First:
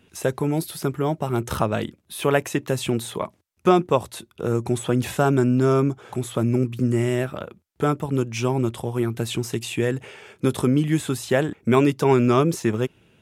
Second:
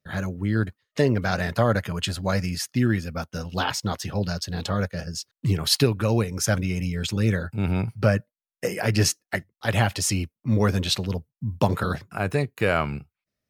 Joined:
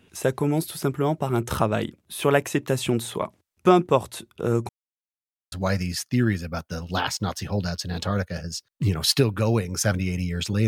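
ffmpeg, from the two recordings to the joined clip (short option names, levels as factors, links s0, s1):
-filter_complex "[0:a]apad=whole_dur=10.67,atrim=end=10.67,asplit=2[s0][s1];[s0]atrim=end=4.69,asetpts=PTS-STARTPTS,afade=t=out:st=4.686:d=0.004:c=hsin[s2];[s1]atrim=start=4.69:end=5.52,asetpts=PTS-STARTPTS,volume=0[s3];[1:a]atrim=start=2.15:end=7.3,asetpts=PTS-STARTPTS,afade=t=in:d=0.004:c=hsin[s4];[s2][s3][s4]concat=n=3:v=0:a=1"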